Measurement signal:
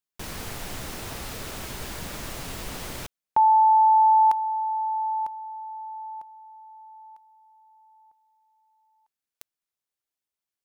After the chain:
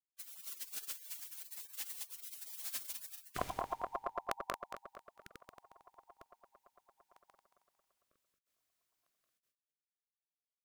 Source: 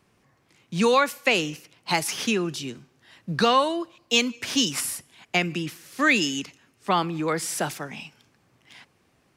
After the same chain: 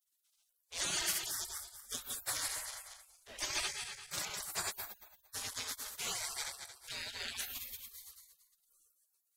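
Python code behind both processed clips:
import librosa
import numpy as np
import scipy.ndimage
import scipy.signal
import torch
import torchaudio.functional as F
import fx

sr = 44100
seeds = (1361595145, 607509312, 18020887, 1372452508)

y = fx.reverse_delay_fb(x, sr, ms=113, feedback_pct=55, wet_db=-1)
y = fx.spec_gate(y, sr, threshold_db=-30, keep='weak')
y = y * librosa.db_to_amplitude(2.0)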